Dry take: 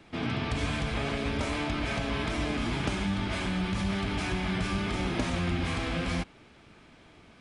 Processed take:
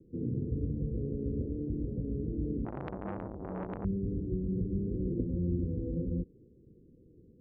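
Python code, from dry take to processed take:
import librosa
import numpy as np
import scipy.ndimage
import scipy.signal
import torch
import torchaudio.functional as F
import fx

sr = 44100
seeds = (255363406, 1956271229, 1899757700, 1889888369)

y = scipy.signal.sosfilt(scipy.signal.cheby1(6, 3, 510.0, 'lowpass', fs=sr, output='sos'), x)
y = fx.transformer_sat(y, sr, knee_hz=1200.0, at=(2.65, 3.85))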